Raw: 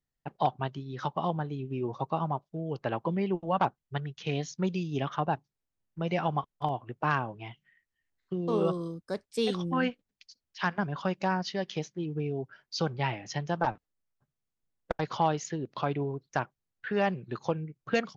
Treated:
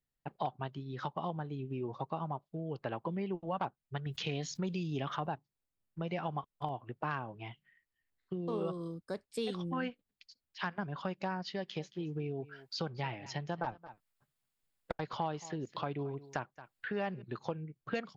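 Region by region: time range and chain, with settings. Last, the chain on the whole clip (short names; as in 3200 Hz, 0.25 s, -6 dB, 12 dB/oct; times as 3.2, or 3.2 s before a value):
4.06–5.32 high shelf 5600 Hz +6.5 dB + fast leveller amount 50%
11.55–17.22 echo 0.223 s -21 dB + mismatched tape noise reduction encoder only
whole clip: bell 6000 Hz -9 dB 0.25 oct; compressor 2:1, threshold -34 dBFS; gain -2.5 dB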